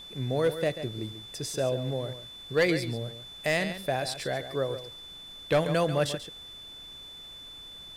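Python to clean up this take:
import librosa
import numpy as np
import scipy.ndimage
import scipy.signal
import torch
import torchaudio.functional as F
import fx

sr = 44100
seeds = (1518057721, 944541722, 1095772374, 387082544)

y = fx.fix_declip(x, sr, threshold_db=-17.0)
y = fx.notch(y, sr, hz=3500.0, q=30.0)
y = fx.noise_reduce(y, sr, print_start_s=6.96, print_end_s=7.46, reduce_db=29.0)
y = fx.fix_echo_inverse(y, sr, delay_ms=139, level_db=-11.5)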